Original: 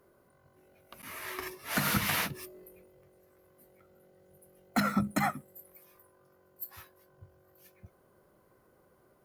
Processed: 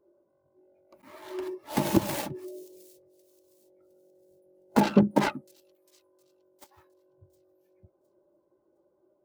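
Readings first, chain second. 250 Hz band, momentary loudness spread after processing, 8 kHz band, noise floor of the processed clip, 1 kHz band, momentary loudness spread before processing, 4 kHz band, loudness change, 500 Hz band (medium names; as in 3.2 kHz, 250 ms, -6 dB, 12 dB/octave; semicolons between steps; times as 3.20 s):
+8.0 dB, 20 LU, -2.5 dB, -71 dBFS, +3.0 dB, 19 LU, -2.5 dB, +5.0 dB, +11.5 dB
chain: self-modulated delay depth 0.94 ms; small resonant body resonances 340/590/840 Hz, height 12 dB, ringing for 30 ms; on a send: feedback echo behind a high-pass 712 ms, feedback 43%, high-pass 4.8 kHz, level -12.5 dB; on the sum: spectral contrast expander 1.5:1; trim +5.5 dB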